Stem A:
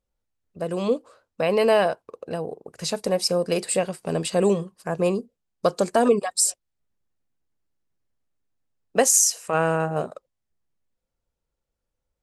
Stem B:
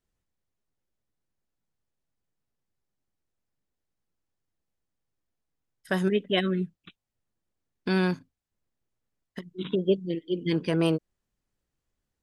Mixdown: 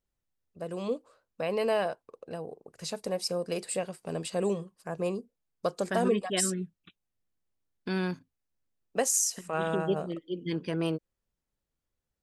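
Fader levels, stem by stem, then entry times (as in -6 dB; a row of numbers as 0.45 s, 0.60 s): -9.0 dB, -6.0 dB; 0.00 s, 0.00 s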